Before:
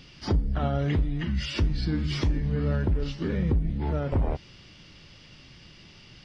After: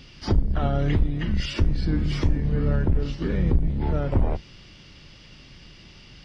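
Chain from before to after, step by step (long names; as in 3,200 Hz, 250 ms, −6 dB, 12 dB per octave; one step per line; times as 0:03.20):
sub-octave generator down 2 octaves, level −1 dB
0:01.53–0:03.13: dynamic equaliser 4,100 Hz, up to −5 dB, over −50 dBFS, Q 0.98
level +2 dB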